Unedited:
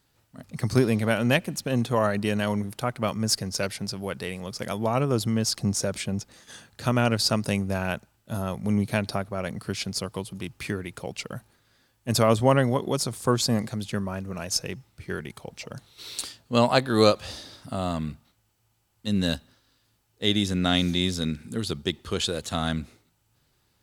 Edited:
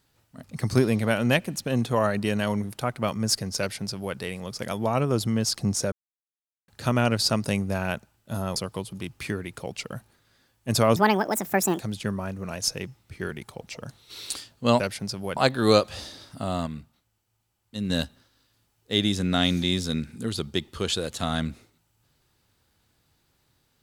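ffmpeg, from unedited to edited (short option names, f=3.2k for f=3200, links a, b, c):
-filter_complex "[0:a]asplit=10[a][b][c][d][e][f][g][h][i][j];[a]atrim=end=5.92,asetpts=PTS-STARTPTS,afade=t=out:st=5.916:d=0.004:c=hsin[k];[b]atrim=start=5.92:end=6.68,asetpts=PTS-STARTPTS,volume=0[l];[c]atrim=start=6.68:end=8.562,asetpts=PTS-STARTPTS,afade=t=in:d=0.004:c=hsin[m];[d]atrim=start=9.958:end=12.364[n];[e]atrim=start=12.36:end=13.68,asetpts=PTS-STARTPTS,asetrate=69678,aresample=44100,atrim=end_sample=36843,asetpts=PTS-STARTPTS[o];[f]atrim=start=13.676:end=16.682[p];[g]atrim=start=3.588:end=4.162[q];[h]atrim=start=16.678:end=17.982[r];[i]atrim=start=17.978:end=19.212,asetpts=PTS-STARTPTS,volume=-5dB[s];[j]atrim=start=19.208[t];[k][l][m]concat=n=3:v=0:a=1[u];[u][n]acrossfade=d=0.004:c1=hsin:c2=hsin[v];[v][o]acrossfade=d=0.004:c1=hsin:c2=hsin[w];[w][p]acrossfade=d=0.004:c1=hsin:c2=hsin[x];[x][q]acrossfade=d=0.004:c1=hsin:c2=hsin[y];[y][r]acrossfade=d=0.004:c1=hsin:c2=hsin[z];[z][s]acrossfade=d=0.004:c1=hsin:c2=hsin[aa];[aa][t]acrossfade=d=0.004:c1=hsin:c2=hsin"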